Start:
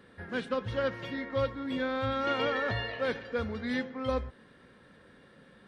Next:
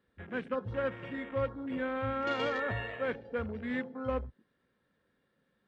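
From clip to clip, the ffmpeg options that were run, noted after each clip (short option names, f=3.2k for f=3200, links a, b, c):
-af "afwtdn=0.00891,volume=-2.5dB"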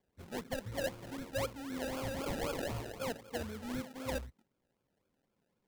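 -af "acrusher=samples=32:mix=1:aa=0.000001:lfo=1:lforange=19.2:lforate=3.9,volume=-4.5dB"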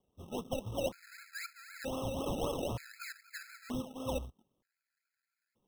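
-af "acrusher=bits=3:mode=log:mix=0:aa=0.000001,afftfilt=real='re*gt(sin(2*PI*0.54*pts/sr)*(1-2*mod(floor(b*sr/1024/1300),2)),0)':imag='im*gt(sin(2*PI*0.54*pts/sr)*(1-2*mod(floor(b*sr/1024/1300),2)),0)':win_size=1024:overlap=0.75,volume=2dB"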